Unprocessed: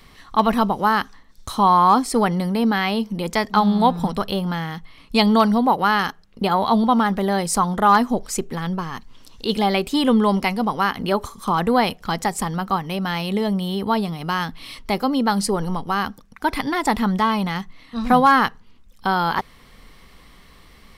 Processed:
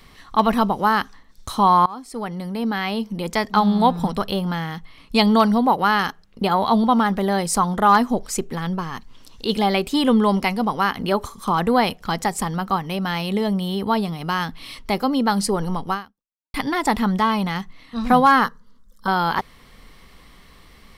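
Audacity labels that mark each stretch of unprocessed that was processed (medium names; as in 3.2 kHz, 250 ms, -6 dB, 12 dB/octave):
1.860000	3.960000	fade in equal-power, from -24 dB
15.930000	16.540000	fade out exponential
18.440000	19.080000	static phaser centre 500 Hz, stages 8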